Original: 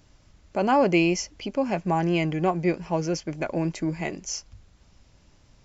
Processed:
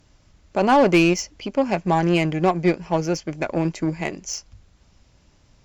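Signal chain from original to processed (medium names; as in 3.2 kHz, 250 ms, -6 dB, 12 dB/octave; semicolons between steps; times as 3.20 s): Chebyshev shaper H 7 -22 dB, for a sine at -8.5 dBFS; saturation -16 dBFS, distortion -14 dB; trim +8 dB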